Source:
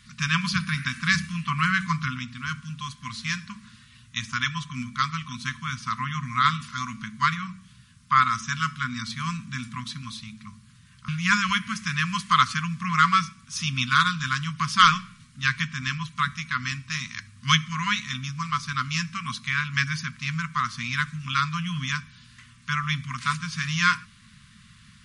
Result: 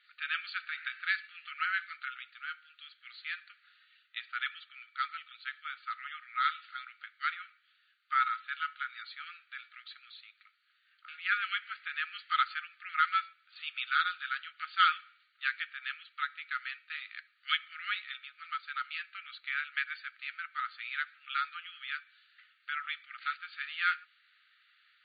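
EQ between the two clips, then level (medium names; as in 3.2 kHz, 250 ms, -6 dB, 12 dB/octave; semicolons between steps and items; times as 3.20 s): brick-wall FIR band-pass 1.2–4.7 kHz; distance through air 170 m; -6.5 dB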